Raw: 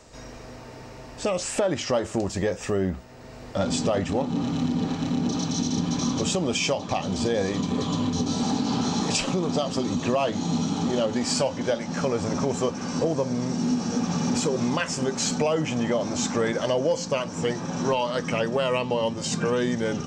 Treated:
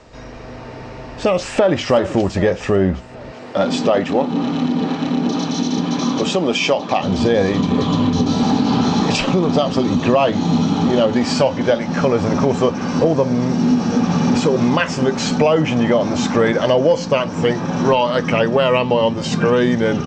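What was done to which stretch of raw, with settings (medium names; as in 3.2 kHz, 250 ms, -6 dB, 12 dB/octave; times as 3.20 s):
1.29–1.83 s: echo throw 390 ms, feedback 65%, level -14 dB
3.32–7.03 s: high-pass 220 Hz
whole clip: low-pass 3.8 kHz 12 dB/octave; level rider gain up to 3 dB; trim +6.5 dB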